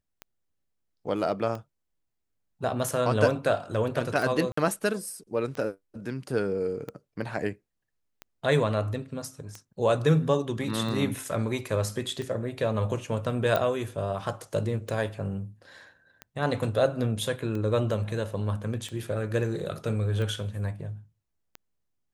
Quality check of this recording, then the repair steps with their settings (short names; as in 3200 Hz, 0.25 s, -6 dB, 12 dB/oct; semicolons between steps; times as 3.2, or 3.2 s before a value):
tick 45 rpm -23 dBFS
4.52–4.57 gap 54 ms
13.56 pop -13 dBFS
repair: de-click; interpolate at 4.52, 54 ms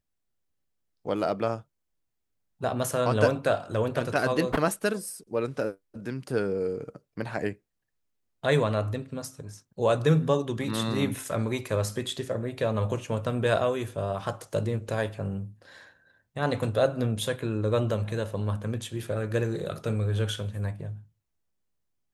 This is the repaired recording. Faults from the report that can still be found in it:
none